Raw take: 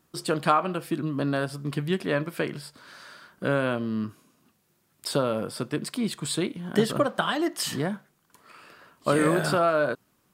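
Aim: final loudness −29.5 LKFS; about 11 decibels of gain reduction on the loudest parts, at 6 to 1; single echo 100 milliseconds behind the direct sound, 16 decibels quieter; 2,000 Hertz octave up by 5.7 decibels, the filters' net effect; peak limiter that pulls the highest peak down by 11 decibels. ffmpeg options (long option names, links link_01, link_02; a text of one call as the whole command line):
ffmpeg -i in.wav -af "equalizer=frequency=2000:width_type=o:gain=8,acompressor=threshold=-27dB:ratio=6,alimiter=limit=-23dB:level=0:latency=1,aecho=1:1:100:0.158,volume=5.5dB" out.wav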